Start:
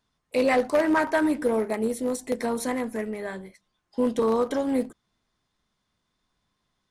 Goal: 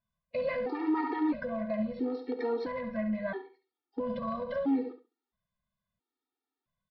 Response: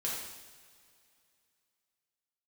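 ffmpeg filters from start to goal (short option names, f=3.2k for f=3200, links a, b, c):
-filter_complex "[0:a]agate=range=-11dB:threshold=-39dB:ratio=16:detection=peak,aecho=1:1:70|140|210:0.282|0.0592|0.0124,asplit=2[a][b];[1:a]atrim=start_sample=2205,atrim=end_sample=3087[c];[b][c]afir=irnorm=-1:irlink=0,volume=-9.5dB[d];[a][d]amix=inputs=2:normalize=0,aresample=11025,aresample=44100,highshelf=f=3k:g=-11.5,alimiter=limit=-20.5dB:level=0:latency=1:release=94,afftfilt=real='re*gt(sin(2*PI*0.75*pts/sr)*(1-2*mod(floor(b*sr/1024/240),2)),0)':imag='im*gt(sin(2*PI*0.75*pts/sr)*(1-2*mod(floor(b*sr/1024/240),2)),0)':win_size=1024:overlap=0.75"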